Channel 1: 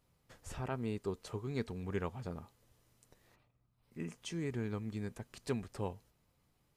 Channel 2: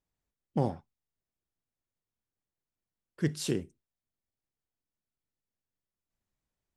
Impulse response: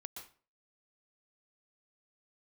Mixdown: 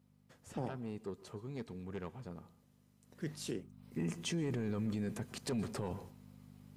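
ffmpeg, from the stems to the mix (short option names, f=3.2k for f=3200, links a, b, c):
-filter_complex "[0:a]lowshelf=f=240:g=8,aeval=exprs='0.112*(cos(1*acos(clip(val(0)/0.112,-1,1)))-cos(1*PI/2))+0.02*(cos(5*acos(clip(val(0)/0.112,-1,1)))-cos(5*PI/2))':c=same,aeval=exprs='val(0)+0.00355*(sin(2*PI*50*n/s)+sin(2*PI*2*50*n/s)/2+sin(2*PI*3*50*n/s)/3+sin(2*PI*4*50*n/s)/4+sin(2*PI*5*50*n/s)/5)':c=same,afade=t=in:st=3.02:d=0.42:silence=0.237137,asplit=2[a][b];[b]volume=-7.5dB[c];[1:a]volume=-8.5dB[d];[2:a]atrim=start_sample=2205[e];[c][e]afir=irnorm=-1:irlink=0[f];[a][d][f]amix=inputs=3:normalize=0,highpass=150,alimiter=level_in=4.5dB:limit=-24dB:level=0:latency=1:release=11,volume=-4.5dB"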